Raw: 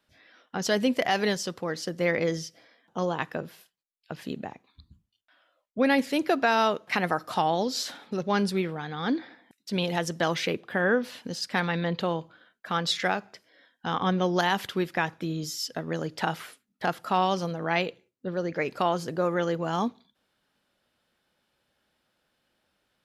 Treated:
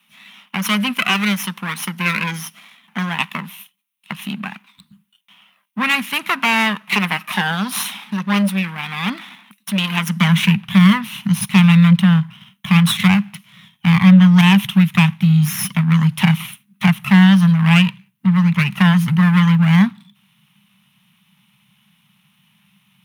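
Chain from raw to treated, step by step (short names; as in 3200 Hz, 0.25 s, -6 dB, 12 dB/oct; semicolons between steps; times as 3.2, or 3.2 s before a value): minimum comb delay 0.31 ms; EQ curve 100 Hz 0 dB, 200 Hz +13 dB, 310 Hz -23 dB, 500 Hz -23 dB, 1000 Hz +7 dB, 2700 Hz +10 dB, 4500 Hz 0 dB, 7100 Hz -3 dB, 10000 Hz +9 dB; in parallel at +2 dB: compressor, threshold -33 dBFS, peak gain reduction 19.5 dB; on the sum: soft clip -9 dBFS, distortion -20 dB; high-pass sweep 320 Hz -> 130 Hz, 9.9–10.58; gain +3.5 dB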